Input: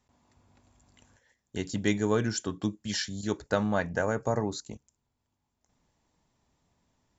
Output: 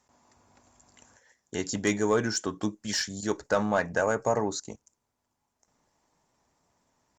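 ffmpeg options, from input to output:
-filter_complex "[0:a]asplit=2[a][b];[b]highpass=f=720:p=1,volume=14dB,asoftclip=type=tanh:threshold=-10.5dB[c];[a][c]amix=inputs=2:normalize=0,lowpass=f=1.8k:p=1,volume=-6dB,highshelf=f=4.6k:t=q:w=1.5:g=8.5,atempo=1" -ar 48000 -c:a libopus -b:a 48k

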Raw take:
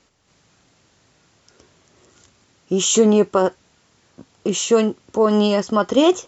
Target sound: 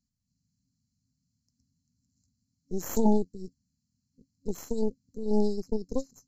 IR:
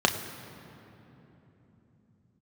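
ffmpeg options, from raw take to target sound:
-af "highshelf=f=3.3k:t=q:w=1.5:g=-7,afftfilt=real='re*(1-between(b*sr/4096,270,4000))':imag='im*(1-between(b*sr/4096,270,4000))':win_size=4096:overlap=0.75,aeval=exprs='0.299*(cos(1*acos(clip(val(0)/0.299,-1,1)))-cos(1*PI/2))+0.0668*(cos(3*acos(clip(val(0)/0.299,-1,1)))-cos(3*PI/2))+0.106*(cos(4*acos(clip(val(0)/0.299,-1,1)))-cos(4*PI/2))':c=same,volume=-5.5dB"

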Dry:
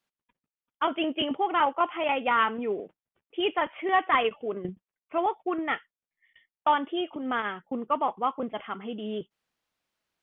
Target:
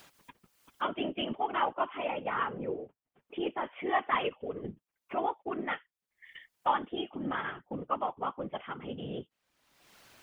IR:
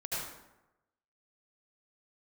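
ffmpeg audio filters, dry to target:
-filter_complex "[0:a]asettb=1/sr,asplit=3[a][b][c];[a]atrim=end=2.064[d];[b]atrim=start=2.06:end=3.65,asetpts=PTS-STARTPTS,afade=t=in:d=0.004:c=qsin,afade=t=out:st=1.586:d=0.004:c=qsin,highshelf=f=2.3k:g=-10.5[e];[c]atrim=start=3.646[f];[d][e]acrossfade=d=0.004:c1=hsin:c2=qsin[g];[g][f]acrossfade=d=0.004:c1=qsin:c2=hsin,acompressor=mode=upward:threshold=-28dB:ratio=2.5,afftfilt=real='hypot(re,im)*cos(2*PI*random(0))':imag='hypot(re,im)*sin(2*PI*random(1))':win_size=512:overlap=0.75"

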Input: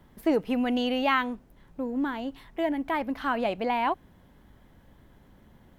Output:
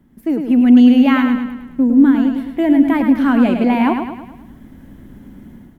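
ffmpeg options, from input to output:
-filter_complex "[0:a]equalizer=f=250:t=o:w=1:g=12,equalizer=f=500:t=o:w=1:g=-5,equalizer=f=1k:t=o:w=1:g=-5,equalizer=f=4k:t=o:w=1:g=-7,dynaudnorm=f=370:g=3:m=13dB,asplit=2[a][b];[b]aecho=0:1:106|212|318|424|530|636:0.473|0.232|0.114|0.0557|0.0273|0.0134[c];[a][c]amix=inputs=2:normalize=0,volume=-1dB"

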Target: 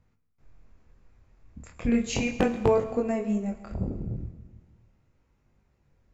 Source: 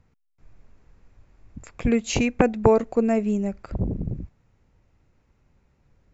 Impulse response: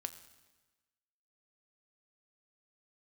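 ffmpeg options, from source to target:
-filter_complex "[0:a]flanger=delay=20:depth=7.5:speed=0.36,aeval=exprs='0.355*(abs(mod(val(0)/0.355+3,4)-2)-1)':c=same[a];[1:a]atrim=start_sample=2205,asetrate=36162,aresample=44100[b];[a][b]afir=irnorm=-1:irlink=0"

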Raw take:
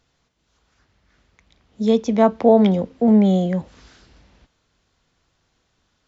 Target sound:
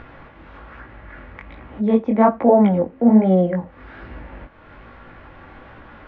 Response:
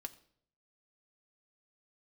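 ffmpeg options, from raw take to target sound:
-filter_complex "[0:a]lowpass=f=2.1k:w=0.5412,lowpass=f=2.1k:w=1.3066,acompressor=mode=upward:threshold=-23dB:ratio=2.5,flanger=delay=16:depth=7.8:speed=1.2,asplit=2[a][b];[1:a]atrim=start_sample=2205,atrim=end_sample=3969,lowshelf=f=240:g=-10.5[c];[b][c]afir=irnorm=-1:irlink=0,volume=5.5dB[d];[a][d]amix=inputs=2:normalize=0"

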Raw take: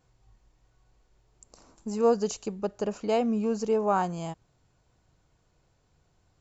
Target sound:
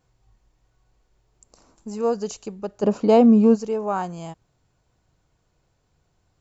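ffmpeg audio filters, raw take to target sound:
-filter_complex "[0:a]asplit=3[a][b][c];[a]afade=t=out:st=2.82:d=0.02[d];[b]equalizer=f=125:t=o:w=1:g=10,equalizer=f=250:t=o:w=1:g=11,equalizer=f=500:t=o:w=1:g=7,equalizer=f=1k:t=o:w=1:g=8,equalizer=f=4k:t=o:w=1:g=5,afade=t=in:st=2.82:d=0.02,afade=t=out:st=3.54:d=0.02[e];[c]afade=t=in:st=3.54:d=0.02[f];[d][e][f]amix=inputs=3:normalize=0"

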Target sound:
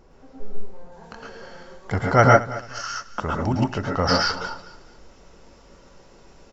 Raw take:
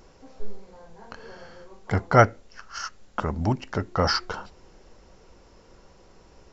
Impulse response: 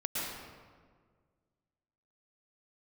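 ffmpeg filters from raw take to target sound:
-filter_complex "[0:a]asetnsamples=n=441:p=0,asendcmd='0.92 highshelf g 2',highshelf=f=2.3k:g=-8.5,aecho=1:1:220|440|660:0.133|0.04|0.012[a];[1:a]atrim=start_sample=2205,atrim=end_sample=6615[b];[a][b]afir=irnorm=-1:irlink=0,volume=1dB"

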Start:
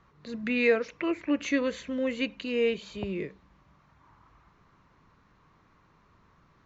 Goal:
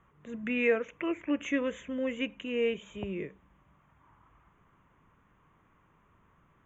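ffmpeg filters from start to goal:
-af "asuperstop=centerf=4700:order=8:qfactor=1.6,volume=-3dB"

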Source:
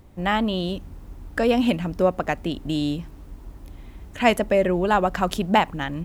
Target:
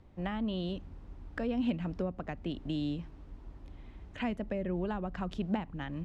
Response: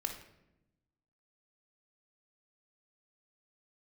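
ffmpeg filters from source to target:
-filter_complex "[0:a]acrossover=split=280[a][b];[b]acompressor=threshold=-28dB:ratio=16[c];[a][c]amix=inputs=2:normalize=0,lowpass=4.3k,volume=-8dB"

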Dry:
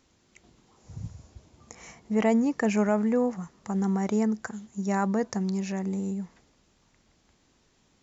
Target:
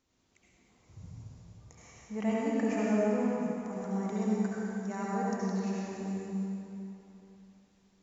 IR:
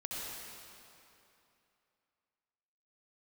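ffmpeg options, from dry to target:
-filter_complex "[1:a]atrim=start_sample=2205,asetrate=40572,aresample=44100[a];[0:a][a]afir=irnorm=-1:irlink=0,volume=-8dB"

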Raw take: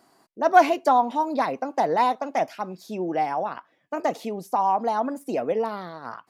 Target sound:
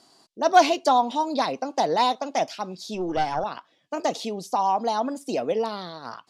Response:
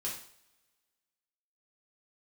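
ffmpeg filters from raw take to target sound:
-filter_complex "[0:a]lowpass=7.6k,asettb=1/sr,asplit=3[a][b][c];[a]atrim=end=2.944[d];[b]atrim=start=2.94:end=3.44,asetpts=PTS-STARTPTS,afade=t=in:d=0.004:c=qsin,afade=t=out:st=0.496:d=0.004:c=qsin,aeval=exprs='0.188*(cos(1*acos(clip(val(0)/0.188,-1,1)))-cos(1*PI/2))+0.0596*(cos(2*acos(clip(val(0)/0.188,-1,1)))-cos(2*PI/2))':c=same[e];[c]atrim=start=3.436[f];[d][e]acrossfade=d=0.004:c1=hsin:c2=qsin[g];[g][f]acrossfade=d=0.004:c1=qsin:c2=hsin,highshelf=f=2.7k:t=q:w=1.5:g=9"

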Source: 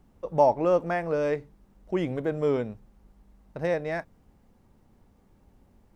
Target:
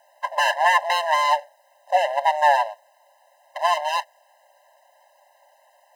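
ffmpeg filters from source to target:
-af "apsyclip=16dB,aeval=exprs='abs(val(0))':c=same,afftfilt=real='re*eq(mod(floor(b*sr/1024/530),2),1)':imag='im*eq(mod(floor(b*sr/1024/530),2),1)':win_size=1024:overlap=0.75"

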